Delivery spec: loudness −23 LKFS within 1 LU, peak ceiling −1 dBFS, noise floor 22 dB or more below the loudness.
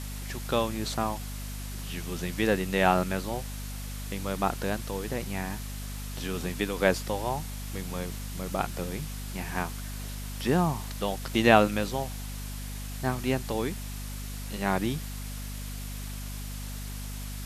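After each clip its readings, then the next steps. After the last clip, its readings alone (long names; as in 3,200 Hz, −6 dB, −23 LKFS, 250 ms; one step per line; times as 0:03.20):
mains hum 50 Hz; hum harmonics up to 250 Hz; level of the hum −35 dBFS; background noise floor −37 dBFS; target noise floor −53 dBFS; integrated loudness −31.0 LKFS; sample peak −3.5 dBFS; target loudness −23.0 LKFS
→ hum removal 50 Hz, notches 5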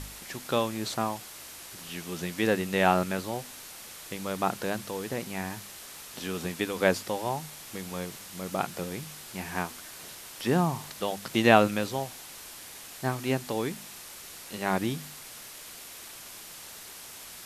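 mains hum none found; background noise floor −45 dBFS; target noise floor −52 dBFS
→ broadband denoise 7 dB, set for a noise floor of −45 dBFS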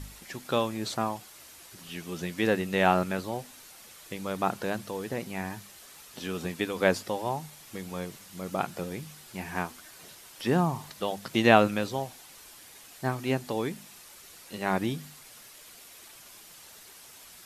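background noise floor −51 dBFS; target noise floor −52 dBFS
→ broadband denoise 6 dB, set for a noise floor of −51 dBFS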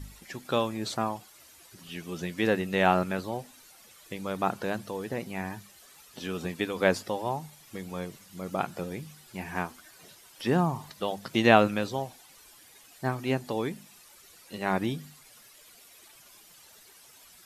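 background noise floor −55 dBFS; integrated loudness −30.0 LKFS; sample peak −3.5 dBFS; target loudness −23.0 LKFS
→ level +7 dB
brickwall limiter −1 dBFS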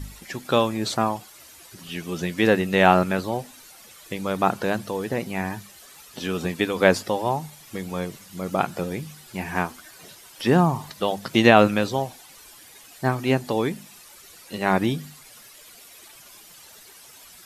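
integrated loudness −23.5 LKFS; sample peak −1.0 dBFS; background noise floor −48 dBFS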